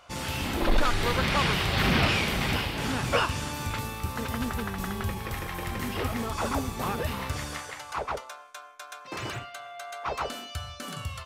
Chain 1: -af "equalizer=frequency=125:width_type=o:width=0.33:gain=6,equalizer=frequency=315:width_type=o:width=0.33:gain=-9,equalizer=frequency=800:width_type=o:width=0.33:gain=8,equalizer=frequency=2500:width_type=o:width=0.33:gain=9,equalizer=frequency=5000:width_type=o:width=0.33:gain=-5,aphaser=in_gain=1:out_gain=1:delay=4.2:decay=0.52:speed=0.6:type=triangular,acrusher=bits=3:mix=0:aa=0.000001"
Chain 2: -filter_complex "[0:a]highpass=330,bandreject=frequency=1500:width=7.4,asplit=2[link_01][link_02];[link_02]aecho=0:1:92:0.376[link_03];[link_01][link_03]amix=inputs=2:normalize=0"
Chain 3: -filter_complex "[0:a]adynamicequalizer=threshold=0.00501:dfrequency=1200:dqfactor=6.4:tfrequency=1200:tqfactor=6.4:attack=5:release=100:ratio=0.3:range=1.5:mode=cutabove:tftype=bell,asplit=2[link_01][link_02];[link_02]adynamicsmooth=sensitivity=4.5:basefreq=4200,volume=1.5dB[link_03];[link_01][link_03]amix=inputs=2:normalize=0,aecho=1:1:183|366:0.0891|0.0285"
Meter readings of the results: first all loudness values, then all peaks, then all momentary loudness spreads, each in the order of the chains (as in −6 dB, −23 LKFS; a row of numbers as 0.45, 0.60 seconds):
−23.5, −30.5, −23.0 LKFS; −7.5, −12.5, −7.5 dBFS; 19, 13, 14 LU